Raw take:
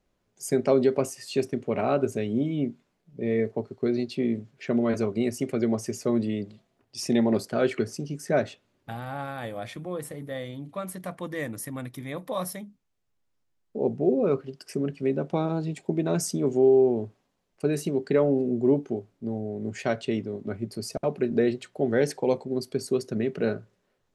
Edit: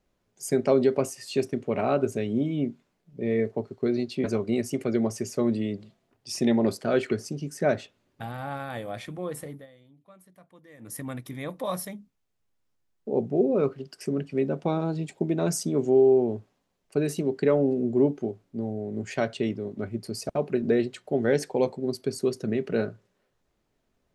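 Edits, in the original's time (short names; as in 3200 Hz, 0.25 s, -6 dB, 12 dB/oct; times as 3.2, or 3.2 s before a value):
4.24–4.92 cut
10.16–11.65 dip -19.5 dB, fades 0.19 s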